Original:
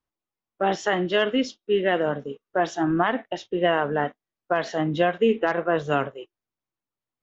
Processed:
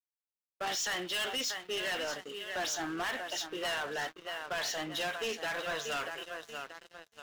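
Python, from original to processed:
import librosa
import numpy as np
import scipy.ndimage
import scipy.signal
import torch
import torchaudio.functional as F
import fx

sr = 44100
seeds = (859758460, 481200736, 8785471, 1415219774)

y = np.diff(x, prepend=0.0)
y = fx.echo_feedback(y, sr, ms=634, feedback_pct=38, wet_db=-12.5)
y = fx.leveller(y, sr, passes=5)
y = y * librosa.db_to_amplitude(-6.0)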